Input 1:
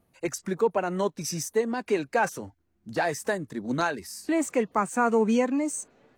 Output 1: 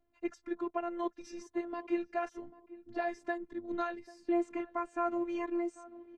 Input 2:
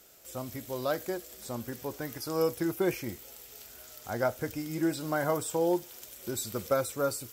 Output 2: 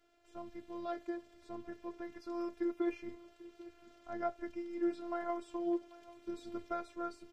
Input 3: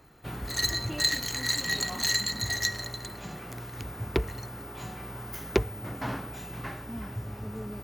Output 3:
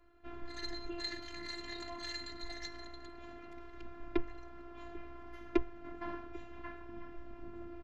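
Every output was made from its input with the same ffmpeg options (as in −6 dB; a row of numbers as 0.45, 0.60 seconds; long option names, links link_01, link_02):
-filter_complex "[0:a]lowpass=2800,lowshelf=frequency=290:gain=5.5,asplit=2[link_01][link_02];[link_02]adelay=792,lowpass=frequency=1200:poles=1,volume=-18dB,asplit=2[link_03][link_04];[link_04]adelay=792,lowpass=frequency=1200:poles=1,volume=0.29,asplit=2[link_05][link_06];[link_06]adelay=792,lowpass=frequency=1200:poles=1,volume=0.29[link_07];[link_03][link_05][link_07]amix=inputs=3:normalize=0[link_08];[link_01][link_08]amix=inputs=2:normalize=0,afftfilt=real='hypot(re,im)*cos(PI*b)':imag='0':win_size=512:overlap=0.75,adynamicequalizer=threshold=0.01:dfrequency=200:dqfactor=0.85:tfrequency=200:tqfactor=0.85:attack=5:release=100:ratio=0.375:range=2:mode=cutabove:tftype=bell,volume=-6dB"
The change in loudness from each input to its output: −9.5, −8.5, −13.5 LU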